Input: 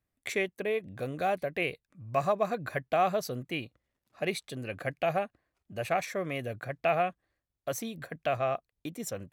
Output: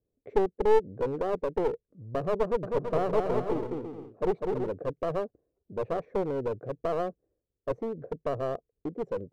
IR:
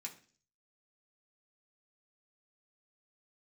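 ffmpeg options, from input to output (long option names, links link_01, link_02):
-filter_complex "[0:a]lowpass=frequency=450:width_type=q:width=4.8,aeval=exprs='clip(val(0),-1,0.0335)':channel_layout=same,asettb=1/sr,asplit=3[link_01][link_02][link_03];[link_01]atrim=end=2.434[link_04];[link_02]atrim=start=2.43:end=4.69,asetpts=PTS-STARTPTS,afade=type=in:duration=0.004:curve=qsin,afade=type=out:start_time=2.256:duration=0.004:curve=qsin,aecho=1:1:200|330|414.5|469.4|505.1:0.631|0.398|0.251|0.158|0.1,atrim=end_sample=99666[link_05];[link_03]atrim=start=4.686[link_06];[link_04][link_05]acrossfade=duration=0.004:curve1=hsin:curve2=qsin[link_07];[link_07][link_06]acrossfade=duration=0.004:curve1=qsin:curve2=hsin"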